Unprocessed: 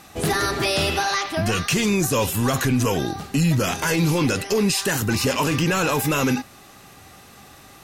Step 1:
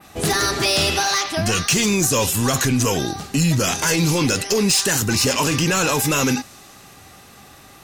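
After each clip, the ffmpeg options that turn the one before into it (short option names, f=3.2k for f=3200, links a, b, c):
-af "adynamicequalizer=threshold=0.00891:dfrequency=6500:dqfactor=0.75:tfrequency=6500:tqfactor=0.75:attack=5:release=100:ratio=0.375:range=4:mode=boostabove:tftype=bell,volume=13dB,asoftclip=hard,volume=-13dB,volume=1dB"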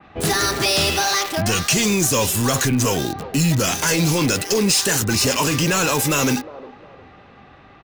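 -filter_complex "[0:a]acrossover=split=400|860|3200[a][b][c][d];[b]aecho=1:1:357|714|1071|1428:0.422|0.148|0.0517|0.0181[e];[d]acrusher=bits=4:mix=0:aa=0.000001[f];[a][e][c][f]amix=inputs=4:normalize=0"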